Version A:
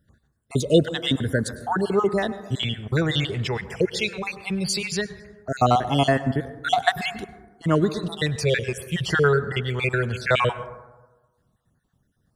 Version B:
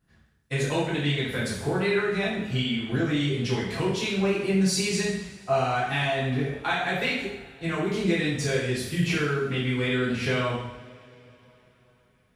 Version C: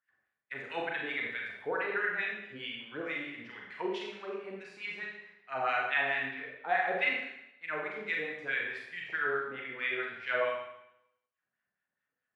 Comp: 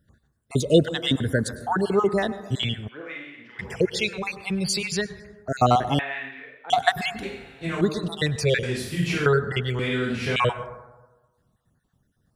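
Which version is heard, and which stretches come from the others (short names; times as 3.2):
A
2.89–3.59 from C
5.99–6.7 from C
7.23–7.81 from B
8.63–9.26 from B
9.79–10.36 from B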